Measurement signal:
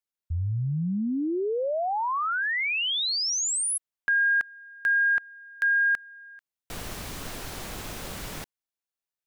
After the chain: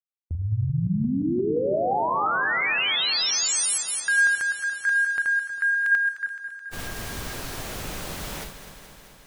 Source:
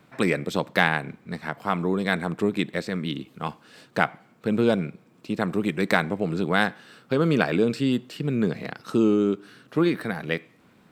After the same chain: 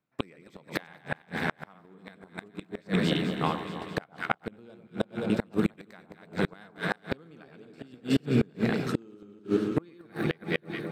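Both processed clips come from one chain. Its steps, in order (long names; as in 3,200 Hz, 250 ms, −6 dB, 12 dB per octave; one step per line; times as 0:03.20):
delay that plays each chunk backwards 174 ms, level −3 dB
noise gate −37 dBFS, range −29 dB
delay that swaps between a low-pass and a high-pass 107 ms, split 1,200 Hz, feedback 85%, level −10 dB
gate with flip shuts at −13 dBFS, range −32 dB
level +1 dB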